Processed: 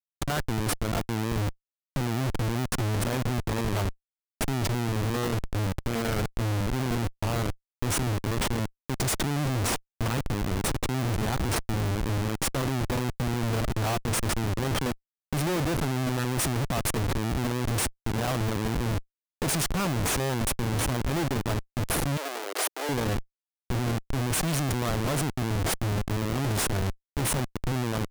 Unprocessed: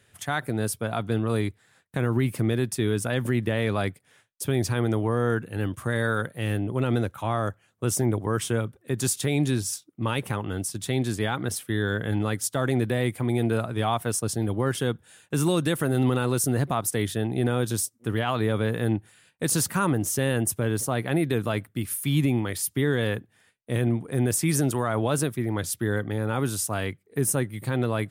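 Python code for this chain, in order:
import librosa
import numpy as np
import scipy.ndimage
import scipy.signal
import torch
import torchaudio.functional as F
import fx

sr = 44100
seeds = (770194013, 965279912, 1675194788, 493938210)

y = fx.schmitt(x, sr, flips_db=-28.5)
y = fx.steep_highpass(y, sr, hz=370.0, slope=36, at=(22.17, 22.89))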